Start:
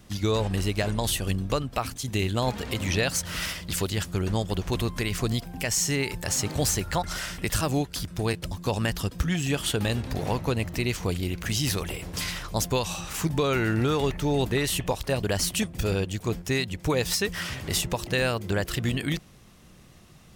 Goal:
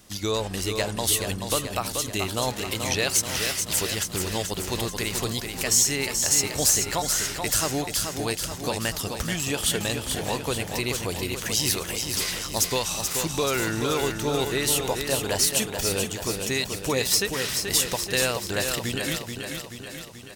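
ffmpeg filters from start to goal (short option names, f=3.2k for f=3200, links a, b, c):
-filter_complex "[0:a]bass=f=250:g=-7,treble=f=4k:g=7,asplit=2[a][b];[b]aecho=0:1:432|864|1296|1728|2160|2592|3024|3456:0.501|0.291|0.169|0.0978|0.0567|0.0329|0.0191|0.0111[c];[a][c]amix=inputs=2:normalize=0"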